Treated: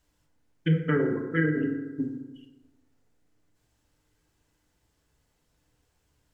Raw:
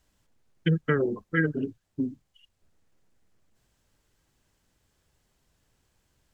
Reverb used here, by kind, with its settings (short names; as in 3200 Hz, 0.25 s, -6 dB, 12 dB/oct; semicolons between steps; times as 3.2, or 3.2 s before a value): FDN reverb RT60 1.3 s, low-frequency decay 0.9×, high-frequency decay 0.4×, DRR 1.5 dB; gain -3 dB